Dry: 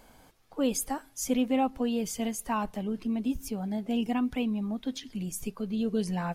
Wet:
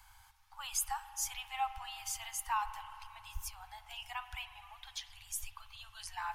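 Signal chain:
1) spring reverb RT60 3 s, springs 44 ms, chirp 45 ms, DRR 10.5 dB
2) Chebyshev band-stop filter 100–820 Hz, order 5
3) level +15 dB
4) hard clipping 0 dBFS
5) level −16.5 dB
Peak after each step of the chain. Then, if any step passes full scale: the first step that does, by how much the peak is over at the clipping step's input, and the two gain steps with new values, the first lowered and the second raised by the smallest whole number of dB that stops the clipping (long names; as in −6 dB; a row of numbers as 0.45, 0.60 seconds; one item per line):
−16.0, −20.5, −5.5, −5.5, −22.0 dBFS
no step passes full scale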